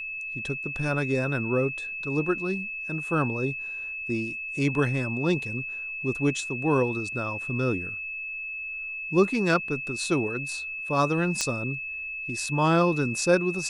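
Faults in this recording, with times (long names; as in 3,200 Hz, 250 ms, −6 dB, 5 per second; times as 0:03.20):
whistle 2,600 Hz −32 dBFS
0:11.41: click −11 dBFS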